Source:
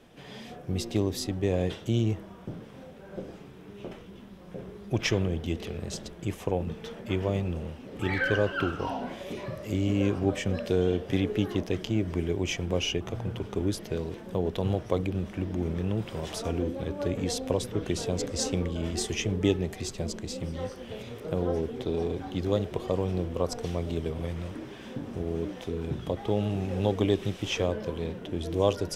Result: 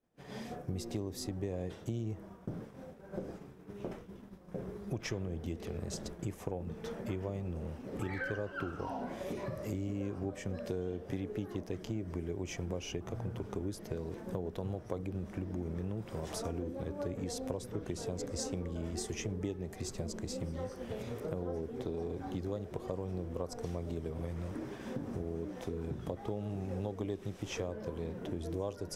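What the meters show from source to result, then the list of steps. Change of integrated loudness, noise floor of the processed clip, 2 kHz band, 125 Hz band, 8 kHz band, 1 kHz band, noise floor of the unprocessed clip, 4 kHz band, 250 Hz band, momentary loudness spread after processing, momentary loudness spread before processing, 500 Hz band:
−9.5 dB, −51 dBFS, −11.0 dB, −8.5 dB, −7.5 dB, −8.5 dB, −46 dBFS, −13.0 dB, −9.0 dB, 5 LU, 14 LU, −9.5 dB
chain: downward expander −39 dBFS
parametric band 3,100 Hz −9 dB 0.96 octaves
downward compressor 4 to 1, threshold −41 dBFS, peak gain reduction 19 dB
level +4 dB

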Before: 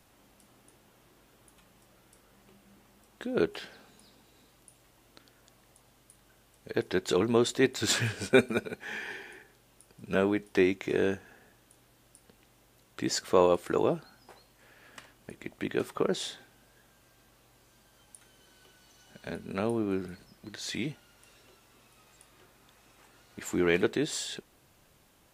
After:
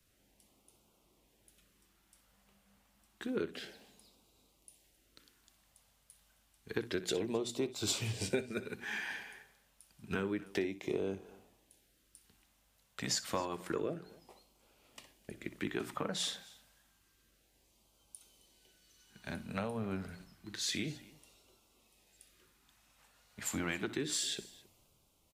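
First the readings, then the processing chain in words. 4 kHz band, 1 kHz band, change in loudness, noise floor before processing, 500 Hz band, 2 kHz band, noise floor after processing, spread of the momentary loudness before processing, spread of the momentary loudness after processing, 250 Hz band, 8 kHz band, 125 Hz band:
−3.0 dB, −9.0 dB, −8.5 dB, −64 dBFS, −11.0 dB, −7.5 dB, −72 dBFS, 18 LU, 19 LU, −8.5 dB, −2.0 dB, −6.0 dB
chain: mains-hum notches 60/120/180/240/300 Hz
auto-filter notch sine 0.29 Hz 330–1,800 Hz
downward compressor 8 to 1, threshold −34 dBFS, peak gain reduction 17 dB
multi-tap delay 62/266 ms −16/−19 dB
multiband upward and downward expander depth 40%

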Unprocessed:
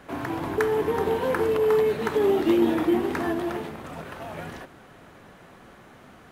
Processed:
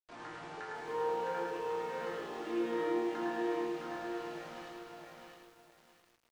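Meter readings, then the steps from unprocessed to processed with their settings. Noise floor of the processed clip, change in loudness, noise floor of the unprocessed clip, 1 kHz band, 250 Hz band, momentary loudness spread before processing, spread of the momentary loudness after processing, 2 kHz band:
−69 dBFS, −13.5 dB, −50 dBFS, −7.5 dB, −13.0 dB, 17 LU, 15 LU, −10.5 dB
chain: high-pass filter 470 Hz 6 dB per octave
downward compressor 2 to 1, threshold −29 dBFS, peak gain reduction 5 dB
resonators tuned to a chord A#2 sus4, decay 0.84 s
bit-depth reduction 10 bits, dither none
high-frequency loss of the air 110 metres
repeating echo 105 ms, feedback 37%, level −3.5 dB
downsampling to 22,050 Hz
feedback echo at a low word length 661 ms, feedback 35%, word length 12 bits, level −3.5 dB
level +8.5 dB

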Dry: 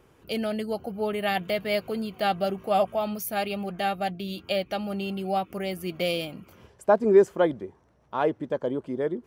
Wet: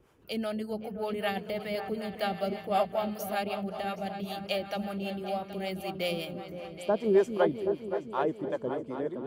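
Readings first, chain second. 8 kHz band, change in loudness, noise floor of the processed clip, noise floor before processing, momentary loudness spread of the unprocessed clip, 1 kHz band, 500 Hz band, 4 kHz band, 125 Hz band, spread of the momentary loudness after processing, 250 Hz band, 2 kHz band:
−6.0 dB, −5.0 dB, −47 dBFS, −60 dBFS, 9 LU, −5.0 dB, −5.0 dB, −4.5 dB, −4.0 dB, 8 LU, −4.0 dB, −5.0 dB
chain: echo whose low-pass opens from repeat to repeat 258 ms, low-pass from 400 Hz, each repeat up 2 octaves, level −6 dB
two-band tremolo in antiphase 5.2 Hz, depth 70%, crossover 470 Hz
level −2 dB

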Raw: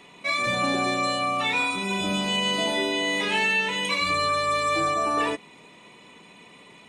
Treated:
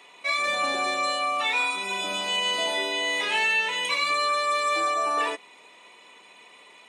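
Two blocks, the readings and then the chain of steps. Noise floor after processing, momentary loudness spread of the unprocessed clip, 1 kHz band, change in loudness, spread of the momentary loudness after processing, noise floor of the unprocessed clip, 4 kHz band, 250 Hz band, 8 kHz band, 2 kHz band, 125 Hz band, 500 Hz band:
−52 dBFS, 3 LU, −0.5 dB, −0.5 dB, 5 LU, −51 dBFS, 0.0 dB, −12.0 dB, 0.0 dB, 0.0 dB, below −15 dB, −2.5 dB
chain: high-pass filter 520 Hz 12 dB per octave

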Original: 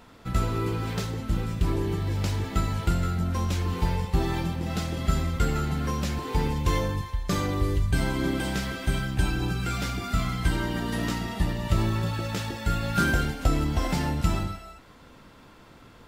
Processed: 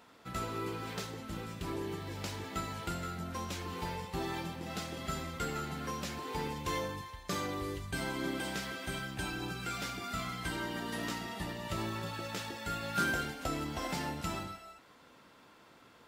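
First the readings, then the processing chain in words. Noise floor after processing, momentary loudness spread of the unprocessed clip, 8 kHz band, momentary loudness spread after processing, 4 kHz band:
−60 dBFS, 4 LU, −5.5 dB, 4 LU, −5.5 dB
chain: high-pass filter 350 Hz 6 dB per octave
level −5.5 dB

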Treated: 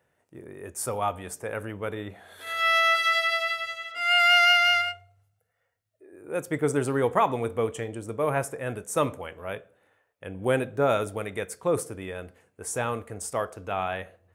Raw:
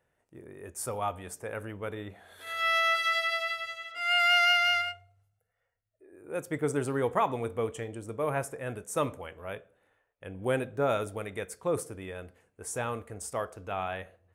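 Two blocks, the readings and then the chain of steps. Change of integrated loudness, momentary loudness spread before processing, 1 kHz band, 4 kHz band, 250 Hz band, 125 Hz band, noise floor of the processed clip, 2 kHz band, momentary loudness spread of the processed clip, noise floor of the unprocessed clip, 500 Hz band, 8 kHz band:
+4.5 dB, 18 LU, +4.5 dB, +4.5 dB, +4.5 dB, +4.0 dB, −75 dBFS, +4.5 dB, 18 LU, −79 dBFS, +4.5 dB, +4.5 dB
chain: high-pass filter 74 Hz
level +4.5 dB

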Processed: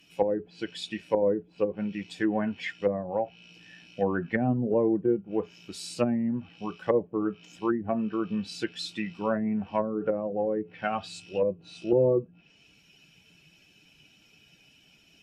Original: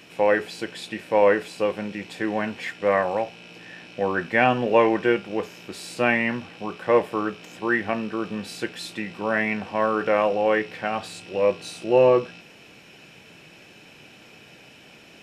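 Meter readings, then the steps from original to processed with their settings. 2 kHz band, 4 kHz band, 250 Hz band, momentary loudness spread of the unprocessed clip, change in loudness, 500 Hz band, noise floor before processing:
−13.5 dB, −5.0 dB, −0.5 dB, 14 LU, −5.5 dB, −6.0 dB, −49 dBFS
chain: spectral dynamics exaggerated over time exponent 1.5
treble cut that deepens with the level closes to 320 Hz, closed at −21.5 dBFS
level +3 dB

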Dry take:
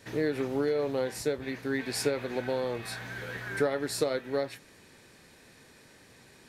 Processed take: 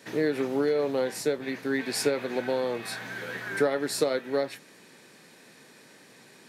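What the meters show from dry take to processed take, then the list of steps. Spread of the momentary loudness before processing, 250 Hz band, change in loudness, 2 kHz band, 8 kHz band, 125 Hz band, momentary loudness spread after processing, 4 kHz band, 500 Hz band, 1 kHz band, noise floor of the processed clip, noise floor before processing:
9 LU, +3.0 dB, +3.0 dB, +3.0 dB, +3.0 dB, −2.5 dB, 9 LU, +3.0 dB, +3.0 dB, +3.0 dB, −54 dBFS, −57 dBFS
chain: high-pass filter 150 Hz 24 dB per octave
level +3 dB

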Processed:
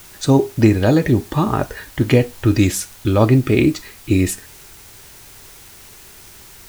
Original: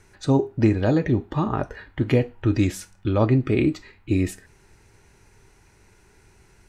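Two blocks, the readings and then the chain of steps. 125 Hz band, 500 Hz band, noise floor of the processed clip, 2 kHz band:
+6.0 dB, +6.0 dB, −42 dBFS, +7.5 dB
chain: high-shelf EQ 4,600 Hz +10.5 dB
in parallel at −10.5 dB: bit-depth reduction 6 bits, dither triangular
on the sum: level +3.5 dB

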